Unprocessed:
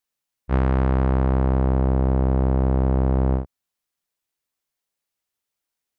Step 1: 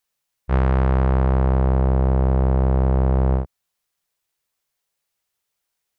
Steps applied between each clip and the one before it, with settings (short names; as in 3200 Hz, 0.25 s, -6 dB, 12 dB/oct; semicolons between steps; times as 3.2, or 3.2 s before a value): bell 270 Hz -9.5 dB 0.42 oct; in parallel at -1.5 dB: limiter -23.5 dBFS, peak gain reduction 10.5 dB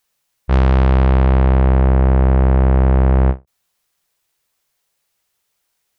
soft clip -15 dBFS, distortion -18 dB; ending taper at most 340 dB/s; gain +8 dB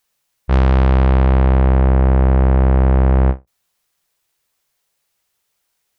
reverb, pre-delay 34 ms, DRR 23.5 dB